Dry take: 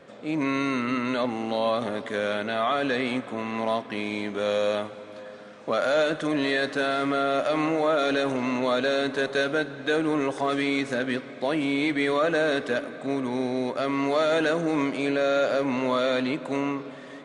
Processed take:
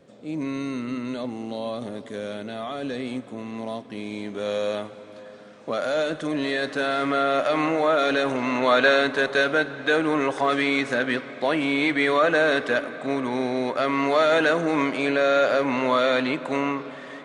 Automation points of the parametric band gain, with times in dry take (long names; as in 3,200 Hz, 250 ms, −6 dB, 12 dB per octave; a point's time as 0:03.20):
parametric band 1,500 Hz 2.8 octaves
0:03.92 −11 dB
0:04.56 −3 dB
0:06.38 −3 dB
0:07.17 +4 dB
0:08.45 +4 dB
0:08.88 +12 dB
0:09.13 +6 dB